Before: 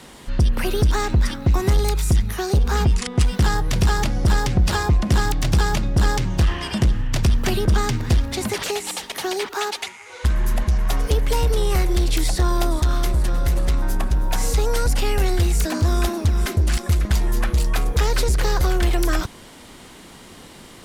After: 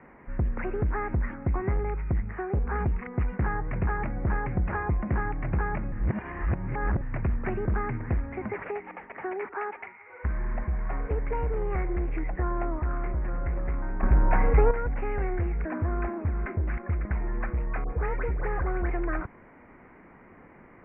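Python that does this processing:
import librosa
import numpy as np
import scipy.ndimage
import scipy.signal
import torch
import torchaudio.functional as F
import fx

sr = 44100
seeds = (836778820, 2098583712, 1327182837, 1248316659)

y = fx.dispersion(x, sr, late='highs', ms=86.0, hz=1700.0, at=(17.84, 18.9))
y = fx.edit(y, sr, fx.reverse_span(start_s=5.92, length_s=1.09),
    fx.clip_gain(start_s=14.03, length_s=0.68, db=9.5), tone=tone)
y = scipy.signal.sosfilt(scipy.signal.butter(12, 2300.0, 'lowpass', fs=sr, output='sos'), y)
y = fx.low_shelf(y, sr, hz=170.0, db=-3.5)
y = F.gain(torch.from_numpy(y), -7.0).numpy()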